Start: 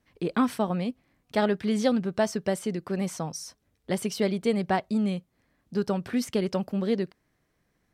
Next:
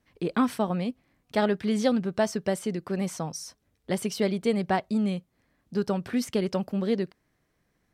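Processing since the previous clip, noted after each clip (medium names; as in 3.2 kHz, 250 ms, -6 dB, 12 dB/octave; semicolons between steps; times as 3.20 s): no audible change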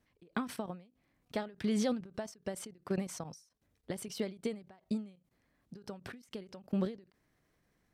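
level held to a coarse grid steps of 15 dB; endings held to a fixed fall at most 150 dB/s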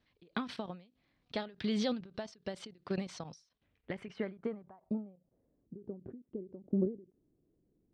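low-pass sweep 4 kHz -> 360 Hz, 3.39–5.77 s; trim -1.5 dB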